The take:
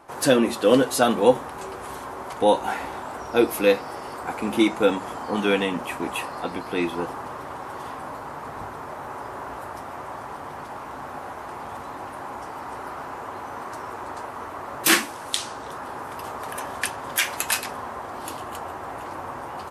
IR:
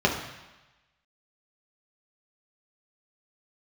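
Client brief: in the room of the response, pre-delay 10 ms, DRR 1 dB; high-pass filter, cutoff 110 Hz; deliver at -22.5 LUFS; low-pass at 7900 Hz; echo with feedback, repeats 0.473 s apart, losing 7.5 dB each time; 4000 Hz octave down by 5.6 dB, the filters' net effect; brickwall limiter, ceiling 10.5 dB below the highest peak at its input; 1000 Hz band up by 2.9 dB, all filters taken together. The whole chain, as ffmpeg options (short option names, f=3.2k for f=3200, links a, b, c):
-filter_complex "[0:a]highpass=110,lowpass=7.9k,equalizer=f=1k:t=o:g=4,equalizer=f=4k:t=o:g=-7.5,alimiter=limit=-13.5dB:level=0:latency=1,aecho=1:1:473|946|1419|1892|2365:0.422|0.177|0.0744|0.0312|0.0131,asplit=2[a][b];[1:a]atrim=start_sample=2205,adelay=10[c];[b][c]afir=irnorm=-1:irlink=0,volume=-17dB[d];[a][d]amix=inputs=2:normalize=0,volume=2.5dB"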